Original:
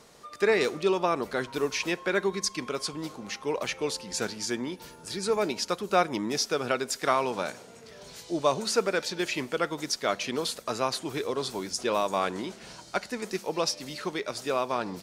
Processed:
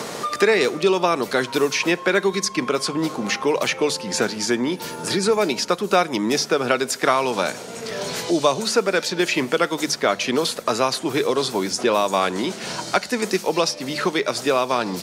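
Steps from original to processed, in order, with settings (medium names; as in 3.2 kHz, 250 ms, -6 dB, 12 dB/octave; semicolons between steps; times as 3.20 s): high-pass 100 Hz; hum notches 50/100/150 Hz; three bands compressed up and down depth 70%; trim +8 dB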